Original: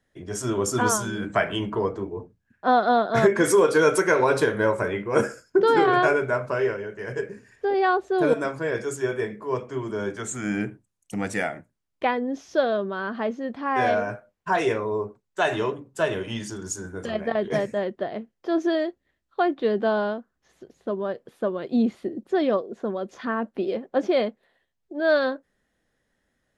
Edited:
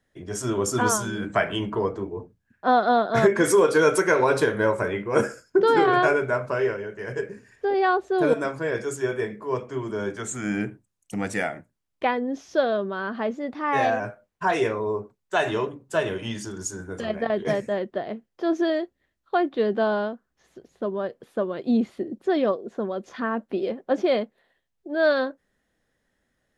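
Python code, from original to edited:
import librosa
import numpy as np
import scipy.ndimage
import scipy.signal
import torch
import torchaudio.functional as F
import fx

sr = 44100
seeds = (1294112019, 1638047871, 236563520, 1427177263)

y = fx.edit(x, sr, fx.speed_span(start_s=13.34, length_s=0.71, speed=1.08), tone=tone)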